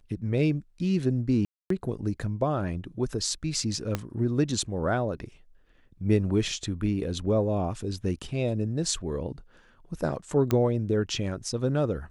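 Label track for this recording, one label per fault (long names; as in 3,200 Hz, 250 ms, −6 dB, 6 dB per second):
1.450000	1.700000	drop-out 253 ms
3.950000	3.950000	click −13 dBFS
10.510000	10.510000	click −12 dBFS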